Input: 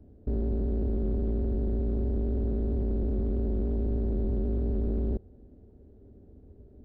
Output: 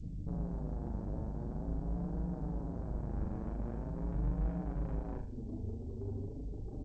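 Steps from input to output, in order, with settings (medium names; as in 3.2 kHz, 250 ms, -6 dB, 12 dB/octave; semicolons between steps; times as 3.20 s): spectral contrast enhancement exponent 1.9; 1.88–4.02 s: band-stop 400 Hz, Q 12; dynamic bell 300 Hz, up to -6 dB, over -53 dBFS, Q 1.2; compression 2:1, threshold -36 dBFS, peak gain reduction 6 dB; low-pass sweep 180 Hz -> 600 Hz, 2.66–6.13 s; valve stage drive 47 dB, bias 0.35; flange 0.45 Hz, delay 6.2 ms, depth 3.1 ms, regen -4%; doubling 39 ms -6 dB; flutter echo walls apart 6.9 m, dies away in 0.45 s; resampled via 11.025 kHz; trim +16 dB; G.722 64 kbps 16 kHz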